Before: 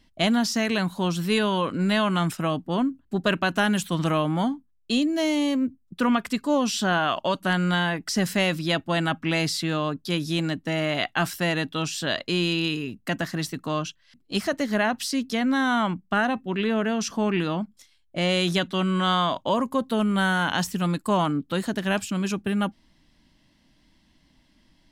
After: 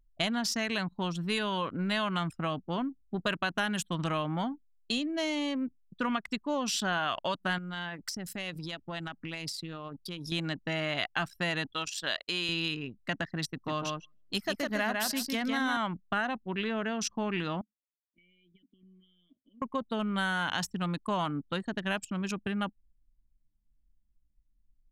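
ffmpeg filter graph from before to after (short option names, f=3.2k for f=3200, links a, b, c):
-filter_complex "[0:a]asettb=1/sr,asplit=3[a][b][c];[a]atrim=end=7.584[d];[b]atrim=start=7.58:end=10.32,asetpts=PTS-STARTPTS,afade=t=in:d=0.004:c=qsin,afade=t=out:st=2.736:d=0.004:c=qsin,highshelf=f=5.7k:g=11,acompressor=threshold=-28dB:ratio=10:attack=3.2:release=140:knee=1:detection=peak,volume=24.5dB,asoftclip=hard,volume=-24.5dB[e];[c]atrim=start=10.316[f];[d][e]acrossfade=d=0.004:c1=hsin:c2=qsin[g];[g][f]acrossfade=d=0.004:c1=qsin:c2=hsin,asettb=1/sr,asplit=3[h][i][j];[h]atrim=end=11.724[k];[i]atrim=start=11.72:end=12.49,asetpts=PTS-STARTPTS,afade=t=in:d=0.004:c=qsin,afade=t=out:st=0.766:d=0.004:c=qsin,highpass=f=470:p=1,acrusher=bits=8:mix=0:aa=0.5[l];[j]atrim=start=12.486[m];[k][l]acrossfade=d=0.004:c1=hsin:c2=qsin[n];[n][m]acrossfade=d=0.004:c1=qsin:c2=hsin,asettb=1/sr,asplit=3[o][p][q];[o]atrim=end=13.494[r];[p]atrim=start=13.49:end=15.77,asetpts=PTS-STARTPTS,afade=t=in:d=0.004:c=qsin,afade=t=out:st=2.276:d=0.004:c=qsin,equalizer=f=13k:t=o:w=0.38:g=12.5,aecho=1:1:153|306|459:0.668|0.12|0.0217,atrim=end_sample=100548[s];[q]atrim=start=15.766[t];[r][s]acrossfade=d=0.004:c1=hsin:c2=qsin[u];[u][t]acrossfade=d=0.004:c1=qsin:c2=hsin,asettb=1/sr,asplit=3[v][w][x];[v]atrim=end=17.614[y];[w]atrim=start=17.61:end=19.62,asetpts=PTS-STARTPTS,afade=t=in:d=0.004:c=qsin,afade=t=out:st=2.006:d=0.004:c=qsin,asplit=3[z][aa][ab];[z]bandpass=f=270:t=q:w=8,volume=0dB[ac];[aa]bandpass=f=2.29k:t=q:w=8,volume=-6dB[ad];[ab]bandpass=f=3.01k:t=q:w=8,volume=-9dB[ae];[ac][ad][ae]amix=inputs=3:normalize=0,acompressor=threshold=-39dB:ratio=5:attack=3.2:release=140:knee=1:detection=peak[af];[x]atrim=start=19.616[ag];[y][af]acrossfade=d=0.004:c1=hsin:c2=qsin[ah];[ah][ag]acrossfade=d=0.004:c1=qsin:c2=hsin,anlmdn=39.8,equalizer=f=300:w=0.44:g=-7,acompressor=threshold=-30dB:ratio=2"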